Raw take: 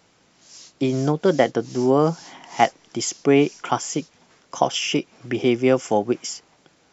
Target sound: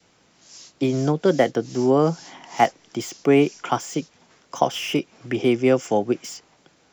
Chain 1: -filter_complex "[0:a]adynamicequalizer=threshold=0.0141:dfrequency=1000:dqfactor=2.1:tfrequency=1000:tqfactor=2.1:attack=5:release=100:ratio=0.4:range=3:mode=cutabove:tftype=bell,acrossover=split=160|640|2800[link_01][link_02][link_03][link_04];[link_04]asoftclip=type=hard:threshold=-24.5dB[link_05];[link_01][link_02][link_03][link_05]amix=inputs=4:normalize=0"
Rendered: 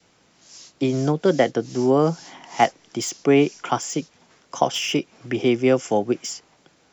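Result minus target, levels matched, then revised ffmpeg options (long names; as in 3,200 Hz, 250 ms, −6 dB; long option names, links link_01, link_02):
hard clipping: distortion −9 dB
-filter_complex "[0:a]adynamicequalizer=threshold=0.0141:dfrequency=1000:dqfactor=2.1:tfrequency=1000:tqfactor=2.1:attack=5:release=100:ratio=0.4:range=3:mode=cutabove:tftype=bell,acrossover=split=160|640|2800[link_01][link_02][link_03][link_04];[link_04]asoftclip=type=hard:threshold=-34.5dB[link_05];[link_01][link_02][link_03][link_05]amix=inputs=4:normalize=0"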